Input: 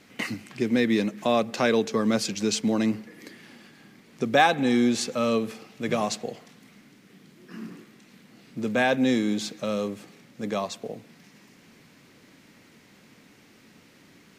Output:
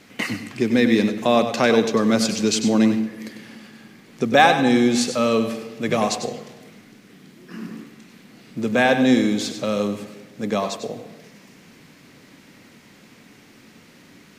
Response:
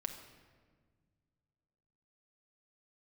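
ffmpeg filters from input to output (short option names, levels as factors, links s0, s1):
-filter_complex "[0:a]asplit=2[s0][s1];[1:a]atrim=start_sample=2205,asetrate=57330,aresample=44100,adelay=97[s2];[s1][s2]afir=irnorm=-1:irlink=0,volume=0.562[s3];[s0][s3]amix=inputs=2:normalize=0,volume=1.78"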